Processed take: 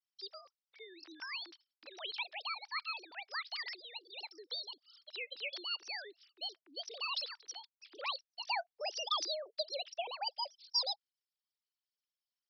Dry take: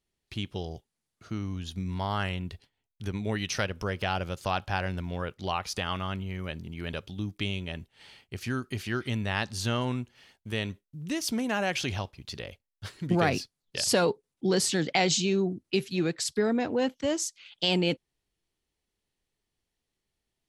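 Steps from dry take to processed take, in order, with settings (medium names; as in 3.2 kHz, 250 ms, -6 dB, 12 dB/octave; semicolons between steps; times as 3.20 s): formants replaced by sine waves; wide varispeed 1.64×; differentiator; trim +3 dB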